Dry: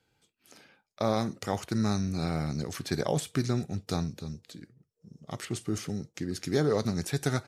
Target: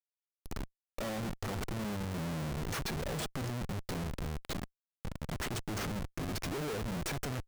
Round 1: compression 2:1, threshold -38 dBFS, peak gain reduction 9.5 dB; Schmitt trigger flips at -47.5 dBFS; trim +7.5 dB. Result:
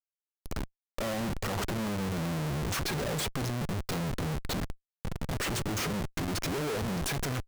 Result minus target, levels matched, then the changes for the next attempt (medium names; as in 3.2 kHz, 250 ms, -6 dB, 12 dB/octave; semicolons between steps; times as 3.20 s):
compression: peak gain reduction -4.5 dB
change: compression 2:1, threshold -47 dBFS, peak gain reduction 14 dB